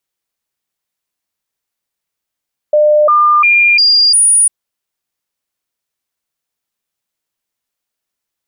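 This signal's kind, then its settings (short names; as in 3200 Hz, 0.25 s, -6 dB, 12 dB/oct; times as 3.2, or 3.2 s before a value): stepped sine 601 Hz up, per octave 1, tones 5, 0.35 s, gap 0.00 s -5.5 dBFS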